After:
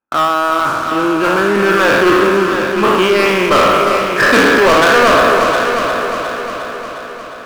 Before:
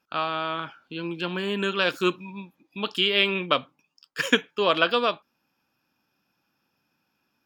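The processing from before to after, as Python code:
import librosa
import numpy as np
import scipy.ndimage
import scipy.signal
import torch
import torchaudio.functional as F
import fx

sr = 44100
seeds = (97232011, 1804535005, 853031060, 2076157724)

p1 = fx.spec_trails(x, sr, decay_s=1.54)
p2 = scipy.signal.sosfilt(scipy.signal.butter(4, 1900.0, 'lowpass', fs=sr, output='sos'), p1)
p3 = fx.peak_eq(p2, sr, hz=170.0, db=-12.0, octaves=0.27)
p4 = fx.leveller(p3, sr, passes=5)
p5 = p4 + fx.echo_heads(p4, sr, ms=356, heads='first and second', feedback_pct=55, wet_db=-9.5, dry=0)
y = p5 * 10.0 ** (-1.0 / 20.0)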